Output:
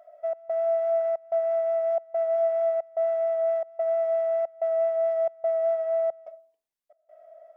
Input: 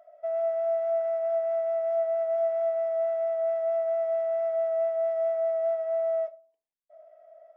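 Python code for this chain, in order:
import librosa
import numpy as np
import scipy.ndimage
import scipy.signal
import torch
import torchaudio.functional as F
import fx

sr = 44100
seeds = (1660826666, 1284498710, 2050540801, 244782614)

y = fx.step_gate(x, sr, bpm=182, pattern='xxxx..xxxx', floor_db=-24.0, edge_ms=4.5)
y = y * librosa.db_to_amplitude(2.5)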